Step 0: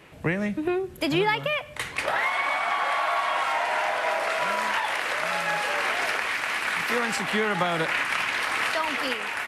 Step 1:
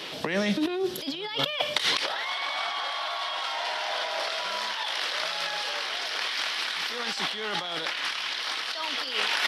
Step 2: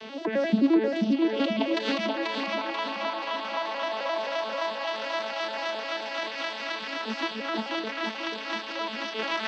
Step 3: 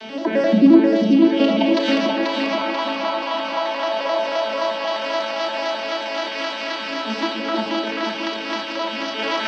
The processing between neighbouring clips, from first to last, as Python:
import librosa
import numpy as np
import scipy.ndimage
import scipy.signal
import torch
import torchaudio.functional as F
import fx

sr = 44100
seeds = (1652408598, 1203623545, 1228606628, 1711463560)

y1 = scipy.signal.sosfilt(scipy.signal.butter(2, 260.0, 'highpass', fs=sr, output='sos'), x)
y1 = fx.band_shelf(y1, sr, hz=4200.0, db=14.0, octaves=1.1)
y1 = fx.over_compress(y1, sr, threshold_db=-33.0, ratio=-1.0)
y1 = y1 * 10.0 ** (2.5 / 20.0)
y2 = fx.vocoder_arp(y1, sr, chord='major triad', root=57, every_ms=87)
y2 = fx.air_absorb(y2, sr, metres=78.0)
y2 = fx.echo_feedback(y2, sr, ms=486, feedback_pct=53, wet_db=-4.0)
y3 = fx.room_shoebox(y2, sr, seeds[0], volume_m3=2400.0, walls='furnished', distance_m=2.7)
y3 = y3 * 10.0 ** (5.0 / 20.0)